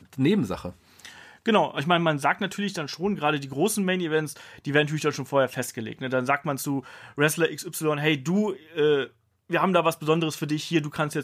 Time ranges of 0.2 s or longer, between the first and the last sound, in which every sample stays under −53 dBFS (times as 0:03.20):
0:09.13–0:09.50